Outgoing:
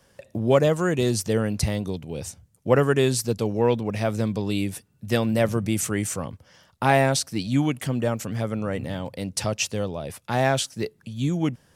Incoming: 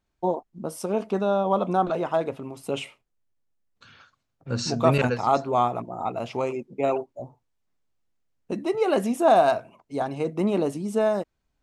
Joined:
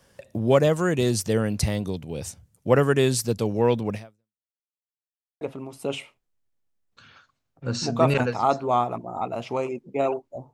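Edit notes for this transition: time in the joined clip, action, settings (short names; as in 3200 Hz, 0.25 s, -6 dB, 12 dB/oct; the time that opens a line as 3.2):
outgoing
3.94–4.46 fade out exponential
4.46–5.41 mute
5.41 switch to incoming from 2.25 s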